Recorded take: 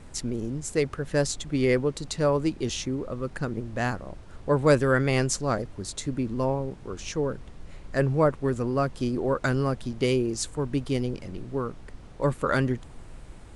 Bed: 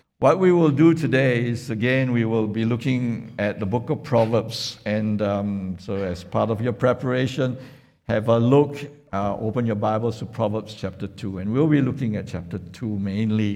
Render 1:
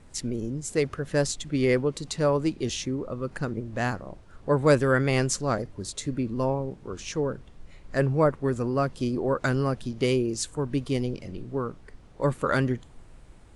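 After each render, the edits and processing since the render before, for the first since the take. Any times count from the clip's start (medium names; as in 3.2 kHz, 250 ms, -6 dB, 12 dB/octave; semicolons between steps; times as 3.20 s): noise print and reduce 6 dB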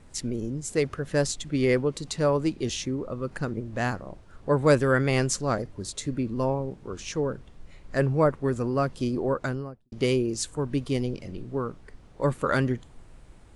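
9.20–9.92 s: studio fade out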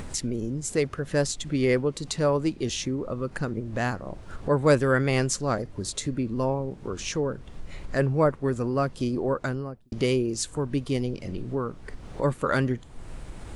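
upward compressor, threshold -25 dBFS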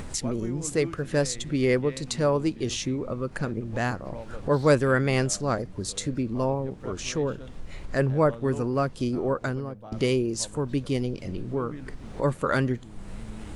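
add bed -22 dB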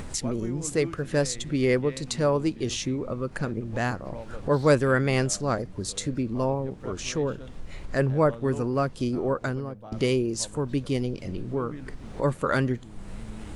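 no audible change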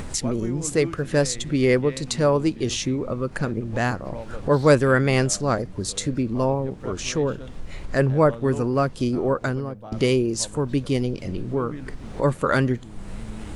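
trim +4 dB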